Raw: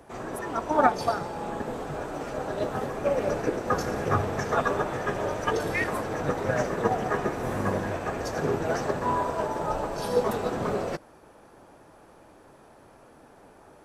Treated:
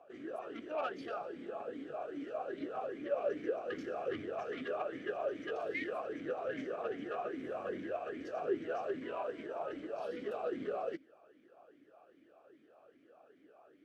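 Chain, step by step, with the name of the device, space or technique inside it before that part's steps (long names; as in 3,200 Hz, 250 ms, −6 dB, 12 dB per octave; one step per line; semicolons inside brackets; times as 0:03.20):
talk box (tube saturation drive 24 dB, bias 0.45; formant filter swept between two vowels a-i 2.5 Hz)
level +2.5 dB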